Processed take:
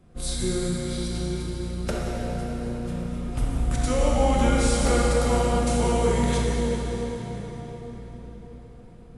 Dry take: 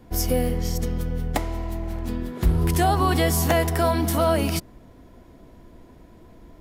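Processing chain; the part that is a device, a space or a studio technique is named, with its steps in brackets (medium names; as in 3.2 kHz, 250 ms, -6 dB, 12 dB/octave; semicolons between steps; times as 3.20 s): slowed and reverbed (tape speed -28%; reverberation RT60 5.1 s, pre-delay 21 ms, DRR -4 dB); trim -6.5 dB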